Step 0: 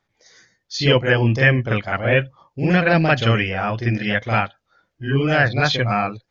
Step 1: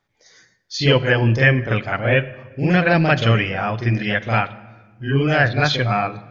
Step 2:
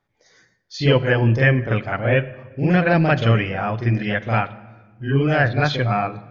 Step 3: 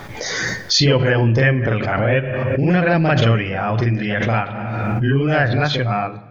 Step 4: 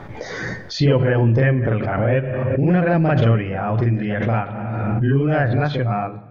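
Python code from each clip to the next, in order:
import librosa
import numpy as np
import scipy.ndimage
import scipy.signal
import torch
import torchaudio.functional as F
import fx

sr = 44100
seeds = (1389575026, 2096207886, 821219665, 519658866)

y1 = fx.room_shoebox(x, sr, seeds[0], volume_m3=1300.0, walls='mixed', distance_m=0.3)
y2 = fx.high_shelf(y1, sr, hz=2300.0, db=-8.0)
y3 = fx.pre_swell(y2, sr, db_per_s=21.0)
y4 = fx.lowpass(y3, sr, hz=1000.0, slope=6)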